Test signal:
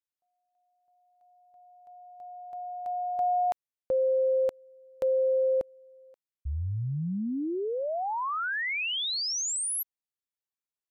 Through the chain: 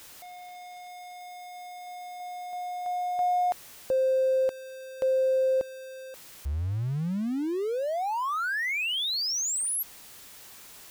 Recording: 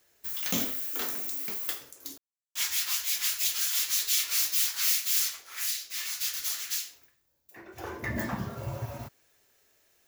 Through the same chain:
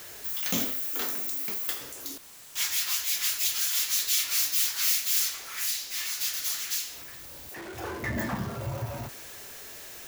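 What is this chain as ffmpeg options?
-af "aeval=exprs='val(0)+0.5*0.0126*sgn(val(0))':c=same"

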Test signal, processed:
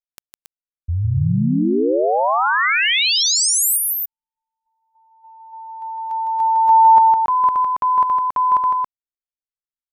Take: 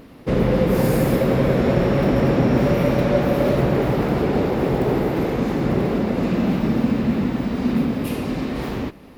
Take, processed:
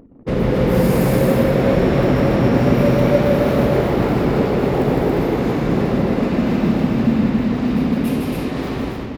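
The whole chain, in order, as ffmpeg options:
-af "anlmdn=0.398,aecho=1:1:157.4|277:0.631|0.708"

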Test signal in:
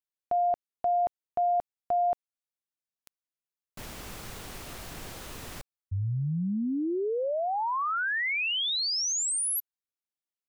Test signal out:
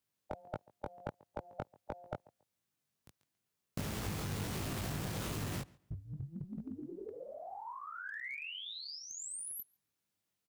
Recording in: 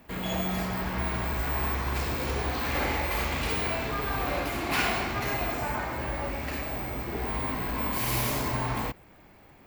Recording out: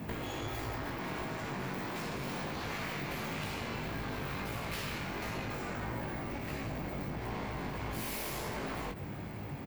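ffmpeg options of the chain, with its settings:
-filter_complex "[0:a]highpass=66,afftfilt=real='re*lt(hypot(re,im),0.112)':imag='im*lt(hypot(re,im),0.112)':win_size=1024:overlap=0.75,equalizer=f=120:w=0.53:g=12,acompressor=threshold=-44dB:ratio=10:attack=13:release=90:knee=1:detection=peak,flanger=delay=18.5:depth=2.7:speed=1.5,asplit=2[a][b];[b]adelay=139,lowpass=f=4.8k:p=1,volume=-24dB,asplit=2[c][d];[d]adelay=139,lowpass=f=4.8k:p=1,volume=0.22[e];[c][e]amix=inputs=2:normalize=0[f];[a][f]amix=inputs=2:normalize=0,aeval=exprs='clip(val(0),-1,0.00398)':c=same,volume=11dB"

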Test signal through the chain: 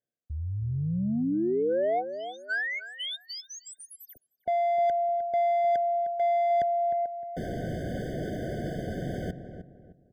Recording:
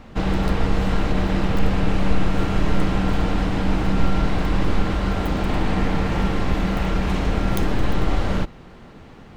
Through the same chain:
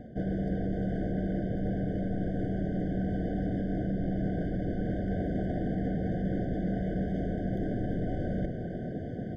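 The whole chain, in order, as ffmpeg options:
-filter_complex "[0:a]highshelf=f=1.6k:t=q:w=3:g=-6,acrossover=split=3300[a][b];[b]acompressor=threshold=-37dB:ratio=4:attack=1:release=60[c];[a][c]amix=inputs=2:normalize=0,equalizer=f=130:t=o:w=2.7:g=13,areverse,acompressor=threshold=-28dB:ratio=4,areverse,asplit=2[d][e];[e]highpass=f=720:p=1,volume=17dB,asoftclip=type=tanh:threshold=-16dB[f];[d][f]amix=inputs=2:normalize=0,lowpass=f=1.4k:p=1,volume=-6dB,volume=20dB,asoftclip=hard,volume=-20dB,asplit=2[g][h];[h]adelay=307,lowpass=f=1.2k:p=1,volume=-9dB,asplit=2[i][j];[j]adelay=307,lowpass=f=1.2k:p=1,volume=0.34,asplit=2[k][l];[l]adelay=307,lowpass=f=1.2k:p=1,volume=0.34,asplit=2[m][n];[n]adelay=307,lowpass=f=1.2k:p=1,volume=0.34[o];[i][k][m][o]amix=inputs=4:normalize=0[p];[g][p]amix=inputs=2:normalize=0,afftfilt=real='re*eq(mod(floor(b*sr/1024/740),2),0)':imag='im*eq(mod(floor(b*sr/1024/740),2),0)':win_size=1024:overlap=0.75,volume=-2.5dB"

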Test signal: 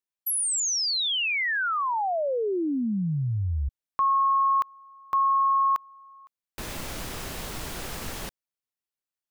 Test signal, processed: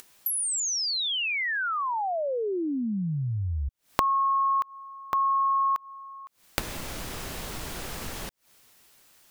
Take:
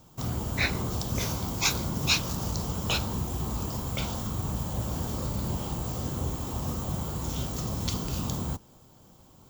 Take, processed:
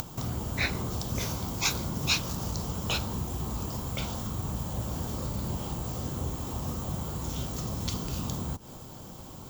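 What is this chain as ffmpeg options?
-af "acompressor=mode=upward:threshold=-35dB:ratio=2.5:attack=82:release=110:knee=2.83:detection=peak,volume=-2dB"

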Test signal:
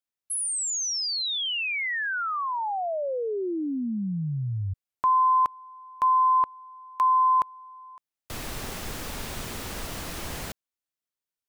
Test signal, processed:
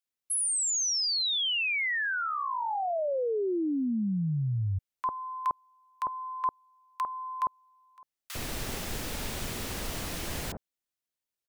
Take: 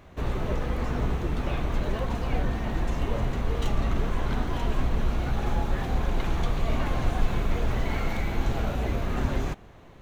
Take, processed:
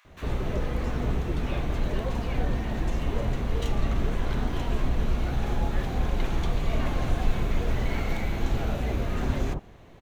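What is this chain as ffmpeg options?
-filter_complex "[0:a]acrossover=split=1100[a][b];[a]adelay=50[c];[c][b]amix=inputs=2:normalize=0"

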